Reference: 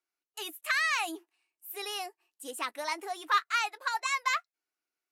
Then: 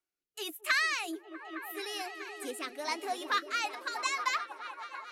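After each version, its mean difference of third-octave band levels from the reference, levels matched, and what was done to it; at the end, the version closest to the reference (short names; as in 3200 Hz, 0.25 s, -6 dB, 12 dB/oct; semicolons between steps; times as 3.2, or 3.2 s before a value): 5.5 dB: low shelf 260 Hz +6.5 dB; repeats that get brighter 0.215 s, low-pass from 200 Hz, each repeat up 1 oct, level -3 dB; dynamic EQ 5000 Hz, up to +4 dB, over -49 dBFS, Q 2.2; rotary speaker horn 1.2 Hz, later 7 Hz, at 3.47; gain +1.5 dB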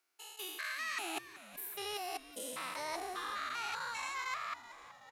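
11.0 dB: stepped spectrum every 0.2 s; low shelf 210 Hz -9 dB; reverse; compressor 5:1, threshold -49 dBFS, peak gain reduction 16 dB; reverse; frequency-shifting echo 0.377 s, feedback 60%, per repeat -120 Hz, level -15.5 dB; gain +10.5 dB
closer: first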